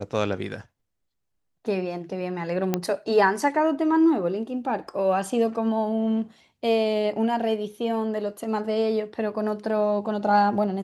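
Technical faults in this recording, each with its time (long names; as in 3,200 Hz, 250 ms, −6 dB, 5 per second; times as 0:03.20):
0:02.74: click −9 dBFS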